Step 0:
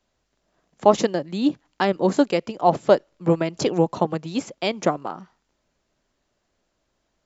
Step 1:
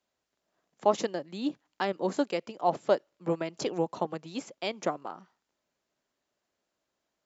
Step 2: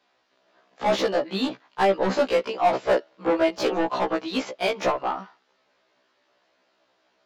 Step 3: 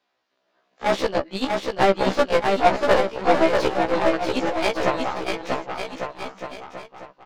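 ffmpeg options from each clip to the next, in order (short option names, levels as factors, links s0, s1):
-af "highpass=f=270:p=1,volume=0.398"
-filter_complex "[0:a]lowpass=f=4600:t=q:w=1.5,asplit=2[s0][s1];[s1]highpass=f=720:p=1,volume=22.4,asoftclip=type=tanh:threshold=0.316[s2];[s0][s2]amix=inputs=2:normalize=0,lowpass=f=1600:p=1,volume=0.501,afftfilt=real='re*1.73*eq(mod(b,3),0)':imag='im*1.73*eq(mod(b,3),0)':win_size=2048:overlap=0.75,volume=1.19"
-filter_complex "[0:a]aeval=exprs='0.355*(cos(1*acos(clip(val(0)/0.355,-1,1)))-cos(1*PI/2))+0.0562*(cos(3*acos(clip(val(0)/0.355,-1,1)))-cos(3*PI/2))+0.0355*(cos(4*acos(clip(val(0)/0.355,-1,1)))-cos(4*PI/2))+0.0126*(cos(7*acos(clip(val(0)/0.355,-1,1)))-cos(7*PI/2))':c=same,asplit=2[s0][s1];[s1]aecho=0:1:640|1152|1562|1889|2151:0.631|0.398|0.251|0.158|0.1[s2];[s0][s2]amix=inputs=2:normalize=0,volume=1.78"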